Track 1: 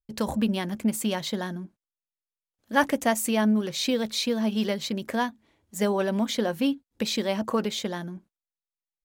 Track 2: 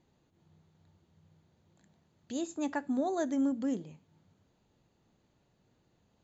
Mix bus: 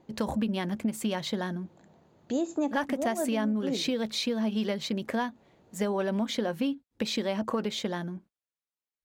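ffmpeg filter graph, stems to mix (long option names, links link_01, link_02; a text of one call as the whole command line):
ffmpeg -i stem1.wav -i stem2.wav -filter_complex "[0:a]highpass=42,highshelf=frequency=6100:gain=-9,acontrast=71,volume=-6.5dB,asplit=2[link_01][link_02];[1:a]equalizer=frequency=570:width_type=o:width=3:gain=12,volume=2dB[link_03];[link_02]apad=whole_len=275012[link_04];[link_03][link_04]sidechaincompress=threshold=-35dB:ratio=8:attack=5.7:release=148[link_05];[link_01][link_05]amix=inputs=2:normalize=0,acompressor=threshold=-25dB:ratio=6" out.wav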